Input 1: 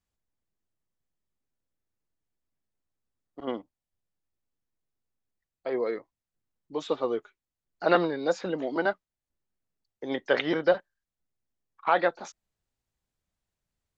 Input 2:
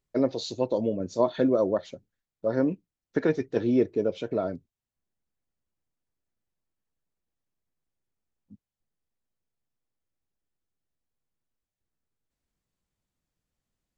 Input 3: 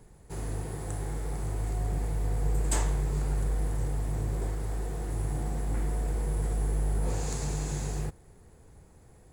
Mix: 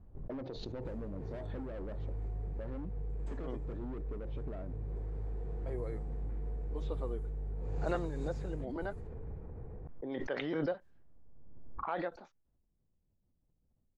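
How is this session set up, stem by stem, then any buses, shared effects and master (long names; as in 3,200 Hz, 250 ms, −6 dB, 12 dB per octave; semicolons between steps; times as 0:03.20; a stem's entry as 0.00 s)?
−15.5 dB, 0.00 s, no bus, no send, no processing
−2.5 dB, 0.15 s, bus A, no send, hard clipping −28 dBFS, distortion −5 dB
+1.5 dB, 0.55 s, bus A, no send, downward compressor 3 to 1, threshold −39 dBFS, peak gain reduction 12 dB; hollow resonant body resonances 450/2,400 Hz, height 8 dB
bus A: 0.0 dB, high-shelf EQ 3,100 Hz −6.5 dB; downward compressor 12 to 1, threshold −43 dBFS, peak gain reduction 15.5 dB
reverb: not used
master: low-pass that shuts in the quiet parts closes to 660 Hz, open at −38.5 dBFS; spectral tilt −2 dB per octave; background raised ahead of every attack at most 24 dB per second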